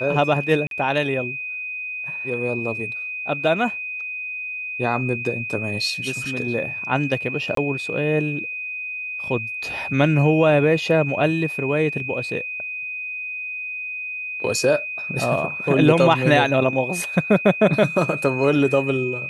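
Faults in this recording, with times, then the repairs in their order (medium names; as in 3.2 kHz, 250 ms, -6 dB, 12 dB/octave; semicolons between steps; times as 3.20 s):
whine 2.5 kHz -27 dBFS
0.67–0.71 s: dropout 42 ms
7.55–7.57 s: dropout 23 ms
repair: band-stop 2.5 kHz, Q 30; interpolate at 0.67 s, 42 ms; interpolate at 7.55 s, 23 ms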